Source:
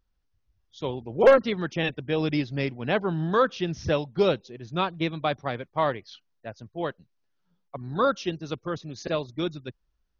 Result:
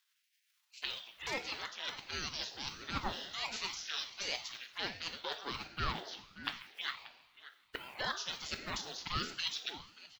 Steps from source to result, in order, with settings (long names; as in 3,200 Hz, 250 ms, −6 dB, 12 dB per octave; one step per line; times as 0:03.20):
spectral envelope flattened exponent 0.6
high-pass filter 150 Hz
noise gate −41 dBFS, range −7 dB
high shelf with overshoot 1,500 Hz +10 dB, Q 1.5
reversed playback
downward compressor 12 to 1, threshold −27 dBFS, peak gain reduction 20.5 dB
reversed playback
phaser swept by the level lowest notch 200 Hz, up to 2,300 Hz, full sweep at −32 dBFS
auto-filter high-pass saw down 0.32 Hz 500–2,300 Hz
slap from a distant wall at 100 metres, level −13 dB
coupled-rooms reverb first 0.66 s, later 3.3 s, from −20 dB, DRR 6 dB
ring modulator whose carrier an LFO sweeps 500 Hz, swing 75%, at 1.4 Hz
level −1.5 dB